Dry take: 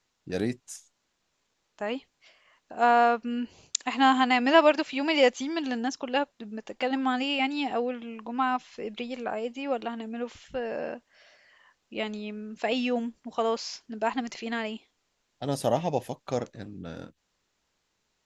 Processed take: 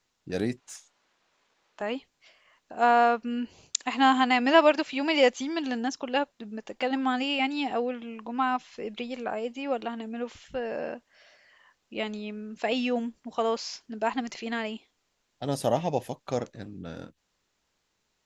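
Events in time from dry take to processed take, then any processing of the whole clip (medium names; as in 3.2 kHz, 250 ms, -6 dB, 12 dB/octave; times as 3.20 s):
0.57–1.82 s: overdrive pedal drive 16 dB, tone 1.9 kHz, clips at -21 dBFS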